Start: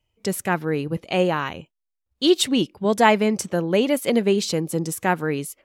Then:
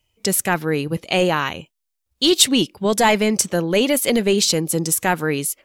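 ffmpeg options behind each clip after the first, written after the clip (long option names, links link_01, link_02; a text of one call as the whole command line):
ffmpeg -i in.wav -af "apsyclip=12.5dB,highshelf=frequency=2700:gain=9.5,volume=-10dB" out.wav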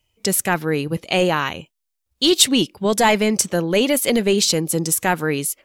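ffmpeg -i in.wav -af anull out.wav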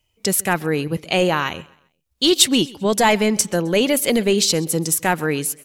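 ffmpeg -i in.wav -af "aecho=1:1:131|262|393:0.075|0.0277|0.0103" out.wav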